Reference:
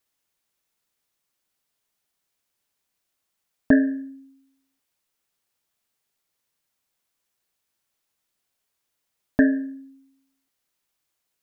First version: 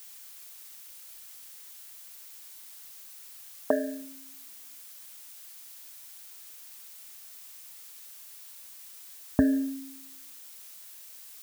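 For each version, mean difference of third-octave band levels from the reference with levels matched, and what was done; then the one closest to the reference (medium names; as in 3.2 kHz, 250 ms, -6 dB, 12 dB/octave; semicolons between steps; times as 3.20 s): 8.5 dB: low-pass 1.1 kHz; compression, threshold -19 dBFS, peak gain reduction 7 dB; high-pass sweep 530 Hz -> 65 Hz, 4.53–5.30 s; added noise blue -48 dBFS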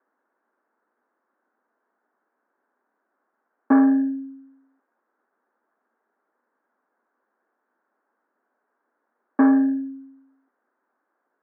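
3.5 dB: in parallel at +3 dB: compression, threshold -25 dBFS, peak gain reduction 12.5 dB; on the sum: saturation -18.5 dBFS, distortion -6 dB; Chebyshev band-pass 230–1600 Hz, order 4; trim +7 dB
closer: second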